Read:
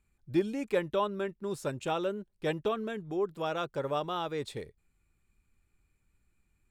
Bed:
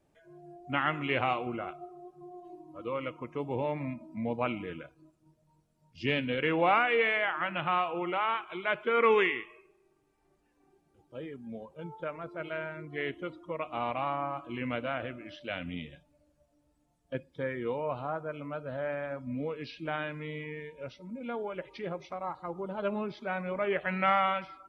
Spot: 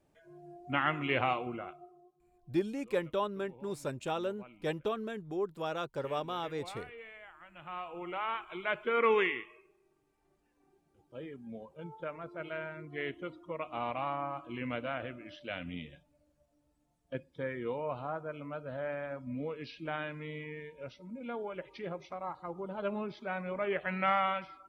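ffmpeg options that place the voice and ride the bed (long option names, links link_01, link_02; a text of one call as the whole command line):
ffmpeg -i stem1.wav -i stem2.wav -filter_complex "[0:a]adelay=2200,volume=-3dB[link_01];[1:a]volume=18.5dB,afade=type=out:start_time=1.24:duration=0.97:silence=0.0841395,afade=type=in:start_time=7.51:duration=1.06:silence=0.105925[link_02];[link_01][link_02]amix=inputs=2:normalize=0" out.wav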